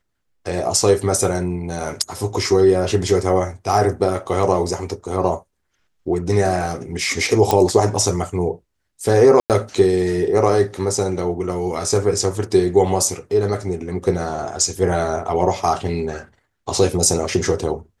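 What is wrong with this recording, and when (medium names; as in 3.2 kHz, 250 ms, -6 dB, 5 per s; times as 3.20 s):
7.51 s: pop -3 dBFS
9.40–9.50 s: dropout 98 ms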